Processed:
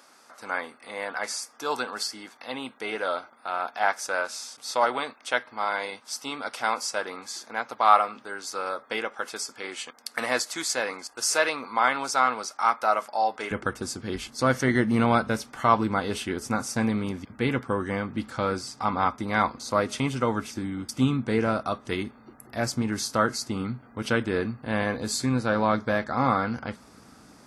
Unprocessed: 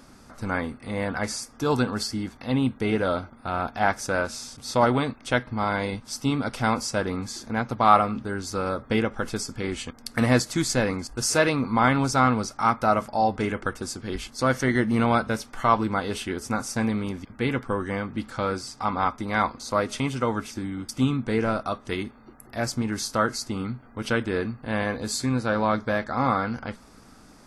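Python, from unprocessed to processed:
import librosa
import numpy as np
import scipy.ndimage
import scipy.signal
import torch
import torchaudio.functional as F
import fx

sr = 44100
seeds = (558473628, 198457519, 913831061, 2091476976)

y = fx.highpass(x, sr, hz=fx.steps((0.0, 610.0), (13.51, 74.0)), slope=12)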